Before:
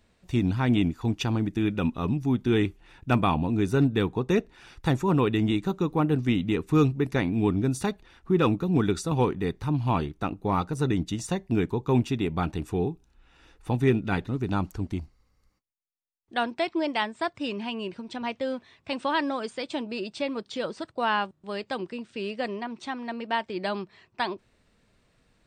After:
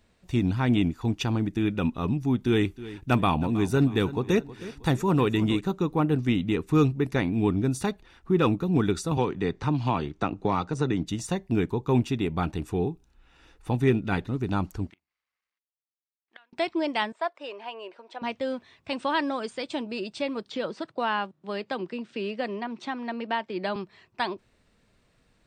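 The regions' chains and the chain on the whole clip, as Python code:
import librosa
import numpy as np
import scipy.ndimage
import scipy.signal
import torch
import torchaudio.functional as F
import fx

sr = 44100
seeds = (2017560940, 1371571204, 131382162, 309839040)

y = fx.chain(x, sr, fx.high_shelf(hz=5500.0, db=5.5),
    fx.echo_feedback(ms=317, feedback_pct=39, wet_db=-16.0), at=(2.42, 5.61))
y = fx.chain(y, sr, fx.lowpass(hz=7700.0, slope=24),
    fx.low_shelf(hz=130.0, db=-6.5),
    fx.band_squash(depth_pct=100), at=(9.17, 11.07))
y = fx.chain(y, sr, fx.law_mismatch(coded='A'),
    fx.bandpass_q(hz=2100.0, q=1.4),
    fx.gate_flip(shuts_db=-35.0, range_db=-25), at=(14.9, 16.53))
y = fx.chain(y, sr, fx.highpass(hz=550.0, slope=24),
    fx.tilt_eq(slope=-4.0), at=(17.12, 18.22))
y = fx.chain(y, sr, fx.highpass(hz=130.0, slope=24),
    fx.air_absorb(metres=75.0),
    fx.band_squash(depth_pct=40), at=(20.5, 23.76))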